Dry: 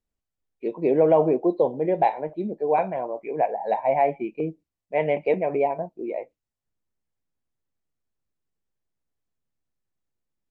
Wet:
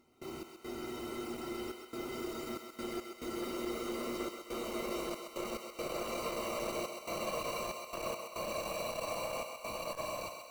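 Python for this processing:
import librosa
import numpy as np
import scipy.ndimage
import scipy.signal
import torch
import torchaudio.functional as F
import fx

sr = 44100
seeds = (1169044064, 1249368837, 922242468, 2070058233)

p1 = x + 0.5 * 10.0 ** (-18.0 / 20.0) * np.diff(np.sign(x), prepend=np.sign(x[:1]))
p2 = scipy.signal.sosfilt(scipy.signal.butter(2, 2200.0, 'lowpass', fs=sr, output='sos'), p1)
p3 = fx.peak_eq(p2, sr, hz=420.0, db=-8.5, octaves=1.7)
p4 = fx.level_steps(p3, sr, step_db=19)
p5 = p3 + (p4 * 10.0 ** (-2.5 / 20.0))
p6 = fx.sample_hold(p5, sr, seeds[0], rate_hz=1700.0, jitter_pct=0)
p7 = fx.paulstretch(p6, sr, seeds[1], factor=44.0, window_s=0.25, from_s=5.98)
p8 = fx.step_gate(p7, sr, bpm=70, pattern='.x.xxxxx.xxx', floor_db=-24.0, edge_ms=4.5)
p9 = p8 + fx.echo_thinned(p8, sr, ms=131, feedback_pct=58, hz=420.0, wet_db=-6.5, dry=0)
p10 = fx.transformer_sat(p9, sr, knee_hz=420.0)
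y = p10 * 10.0 ** (-5.5 / 20.0)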